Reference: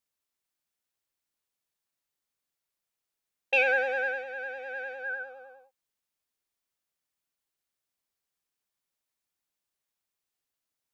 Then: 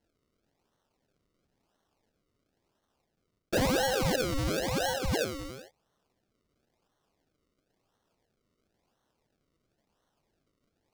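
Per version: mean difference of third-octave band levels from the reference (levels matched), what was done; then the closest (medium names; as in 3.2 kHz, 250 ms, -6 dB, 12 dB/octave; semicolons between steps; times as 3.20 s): 21.5 dB: decimation with a swept rate 36×, swing 100% 0.97 Hz; peaking EQ 5.1 kHz +5.5 dB 1.1 oct; hard clipper -23 dBFS, distortion -11 dB; reverse; compression 6:1, threshold -35 dBFS, peak gain reduction 10 dB; reverse; trim +9 dB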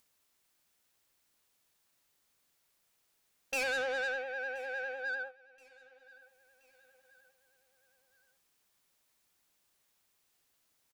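6.0 dB: gate -41 dBFS, range -26 dB; upward compressor, threshold -46 dBFS; saturation -31 dBFS, distortion -6 dB; feedback delay 1026 ms, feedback 46%, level -23.5 dB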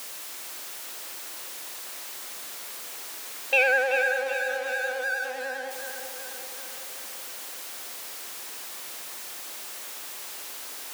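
10.5 dB: jump at every zero crossing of -33.5 dBFS; high-pass 330 Hz 12 dB/octave; on a send: tape echo 379 ms, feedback 65%, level -6 dB, low-pass 2.4 kHz; on the sum: trim +2 dB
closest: second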